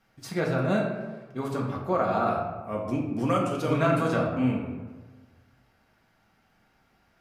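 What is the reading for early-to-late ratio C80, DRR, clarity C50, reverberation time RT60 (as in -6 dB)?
5.5 dB, -2.5 dB, 3.5 dB, 1.3 s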